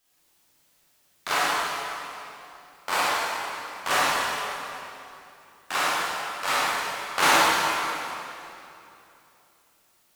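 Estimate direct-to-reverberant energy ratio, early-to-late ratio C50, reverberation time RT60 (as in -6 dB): -9.5 dB, -5.5 dB, 2.9 s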